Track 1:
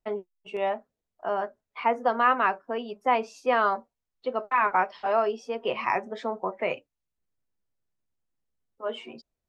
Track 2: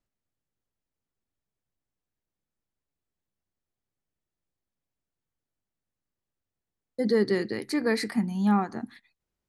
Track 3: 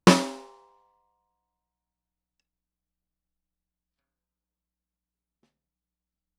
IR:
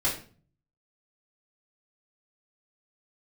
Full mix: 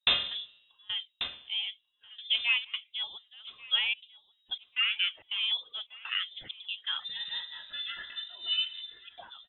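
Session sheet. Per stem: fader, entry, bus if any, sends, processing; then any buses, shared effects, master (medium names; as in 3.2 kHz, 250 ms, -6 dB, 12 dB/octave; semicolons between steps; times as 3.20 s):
-7.0 dB, 0.25 s, no send, echo send -22 dB, trance gate "xxxxx..xxxxx.x" 163 bpm -24 dB; phaser 0.95 Hz, delay 2.9 ms, feedback 39%
-4.0 dB, 0.00 s, send -10 dB, echo send -18 dB, static phaser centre 1.5 kHz, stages 6; endless flanger 2.7 ms -0.29 Hz
-6.0 dB, 0.00 s, send -11 dB, echo send -7.5 dB, feedback comb 83 Hz, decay 0.17 s, harmonics odd, mix 60%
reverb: on, RT60 0.40 s, pre-delay 3 ms
echo: feedback delay 1139 ms, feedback 25%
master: frequency inversion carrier 3.8 kHz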